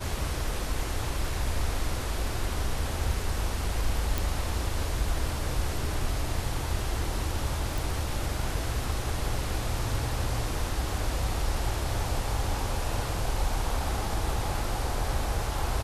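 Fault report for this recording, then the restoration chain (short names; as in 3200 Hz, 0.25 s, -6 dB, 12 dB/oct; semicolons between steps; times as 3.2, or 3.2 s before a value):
4.18 pop
7.78 pop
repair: de-click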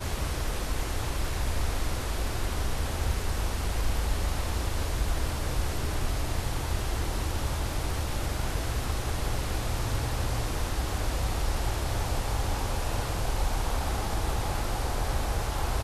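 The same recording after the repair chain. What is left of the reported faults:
none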